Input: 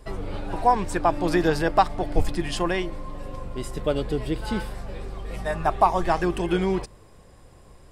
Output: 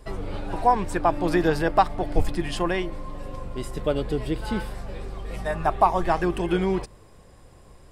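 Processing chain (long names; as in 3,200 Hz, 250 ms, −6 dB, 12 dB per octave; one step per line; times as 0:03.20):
dynamic equaliser 6,200 Hz, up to −4 dB, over −44 dBFS, Q 0.83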